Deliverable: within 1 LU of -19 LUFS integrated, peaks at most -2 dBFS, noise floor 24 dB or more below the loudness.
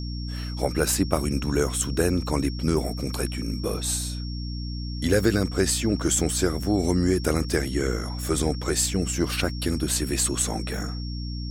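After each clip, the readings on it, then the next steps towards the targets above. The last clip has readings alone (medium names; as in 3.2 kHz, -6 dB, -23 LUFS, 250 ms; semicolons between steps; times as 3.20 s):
hum 60 Hz; highest harmonic 300 Hz; hum level -29 dBFS; steady tone 5.5 kHz; tone level -40 dBFS; loudness -25.5 LUFS; peak level -7.5 dBFS; loudness target -19.0 LUFS
-> de-hum 60 Hz, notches 5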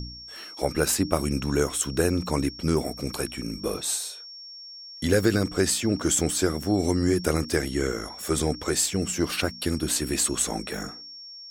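hum not found; steady tone 5.5 kHz; tone level -40 dBFS
-> band-stop 5.5 kHz, Q 30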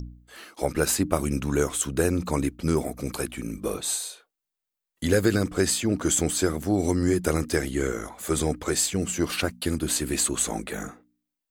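steady tone not found; loudness -25.5 LUFS; peak level -7.5 dBFS; loudness target -19.0 LUFS
-> trim +6.5 dB; peak limiter -2 dBFS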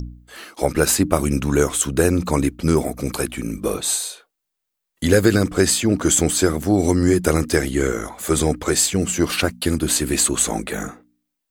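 loudness -19.0 LUFS; peak level -2.0 dBFS; noise floor -80 dBFS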